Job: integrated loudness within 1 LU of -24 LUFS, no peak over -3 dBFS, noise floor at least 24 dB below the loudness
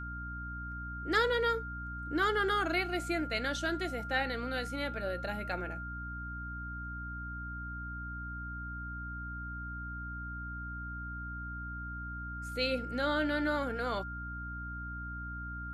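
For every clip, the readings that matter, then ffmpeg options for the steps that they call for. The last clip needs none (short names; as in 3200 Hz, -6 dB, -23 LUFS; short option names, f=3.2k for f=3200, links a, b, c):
hum 60 Hz; harmonics up to 300 Hz; hum level -40 dBFS; steady tone 1400 Hz; tone level -41 dBFS; loudness -35.5 LUFS; peak -17.0 dBFS; loudness target -24.0 LUFS
-> -af "bandreject=f=60:t=h:w=6,bandreject=f=120:t=h:w=6,bandreject=f=180:t=h:w=6,bandreject=f=240:t=h:w=6,bandreject=f=300:t=h:w=6"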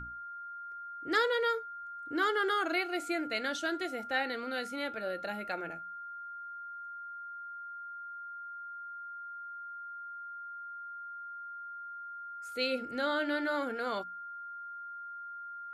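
hum none; steady tone 1400 Hz; tone level -41 dBFS
-> -af "bandreject=f=1.4k:w=30"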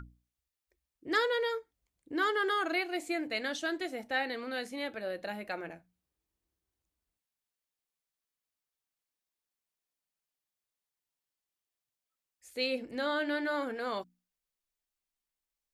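steady tone none; loudness -33.5 LUFS; peak -18.0 dBFS; loudness target -24.0 LUFS
-> -af "volume=9.5dB"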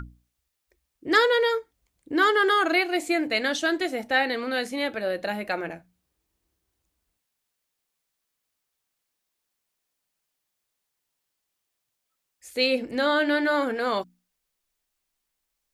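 loudness -24.0 LUFS; peak -8.5 dBFS; noise floor -81 dBFS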